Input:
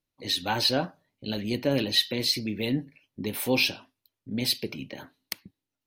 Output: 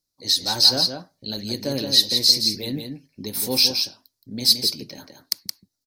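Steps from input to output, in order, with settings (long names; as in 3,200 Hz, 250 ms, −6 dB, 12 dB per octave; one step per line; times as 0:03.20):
high shelf with overshoot 3,700 Hz +9 dB, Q 3
on a send: single-tap delay 171 ms −6 dB
on the sum: level −1.5 dB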